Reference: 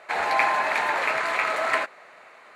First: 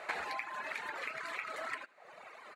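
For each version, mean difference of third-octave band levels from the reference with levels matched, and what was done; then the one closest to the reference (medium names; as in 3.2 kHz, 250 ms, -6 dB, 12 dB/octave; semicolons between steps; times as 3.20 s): 5.0 dB: dynamic bell 740 Hz, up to -6 dB, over -36 dBFS, Q 1.5; compression 12:1, threshold -36 dBFS, peak gain reduction 19 dB; reverb removal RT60 1.9 s; delay 78 ms -21 dB; trim +1.5 dB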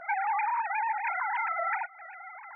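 16.0 dB: formants replaced by sine waves; band-stop 710 Hz, Q 12; dynamic bell 1 kHz, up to +7 dB, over -37 dBFS, Q 3; compression 6:1, threshold -36 dBFS, peak gain reduction 20 dB; trim +7 dB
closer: first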